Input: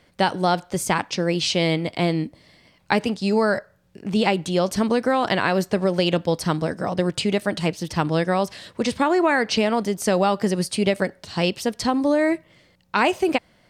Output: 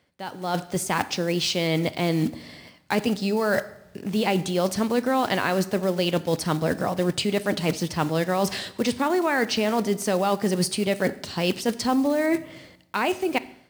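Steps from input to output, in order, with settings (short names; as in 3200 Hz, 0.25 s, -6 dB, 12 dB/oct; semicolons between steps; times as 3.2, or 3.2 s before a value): block floating point 5-bit; reverse; compressor 6:1, threshold -29 dBFS, peak gain reduction 14.5 dB; reverse; HPF 58 Hz; reverb RT60 0.85 s, pre-delay 4 ms, DRR 14 dB; AGC gain up to 14.5 dB; gain -5.5 dB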